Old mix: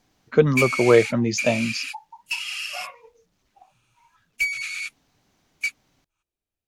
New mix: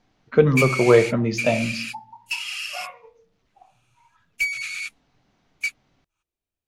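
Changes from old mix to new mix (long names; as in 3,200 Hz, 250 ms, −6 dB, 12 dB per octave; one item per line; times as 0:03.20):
speech: add high-frequency loss of the air 130 metres
reverb: on, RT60 0.45 s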